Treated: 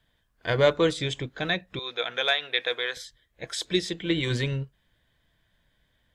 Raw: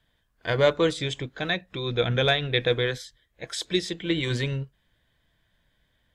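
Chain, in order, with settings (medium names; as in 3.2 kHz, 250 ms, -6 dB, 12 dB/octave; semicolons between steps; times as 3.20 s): 1.79–2.97 s: high-pass 720 Hz 12 dB/octave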